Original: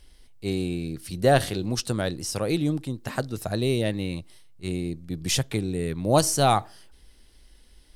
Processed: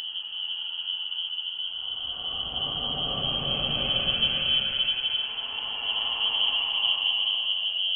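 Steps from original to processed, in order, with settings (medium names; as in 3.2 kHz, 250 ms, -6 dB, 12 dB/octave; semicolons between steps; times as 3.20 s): dynamic bell 1.6 kHz, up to -4 dB, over -36 dBFS, Q 0.82; Paulstretch 13×, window 0.25 s, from 5.06 s; frequency inversion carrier 3.2 kHz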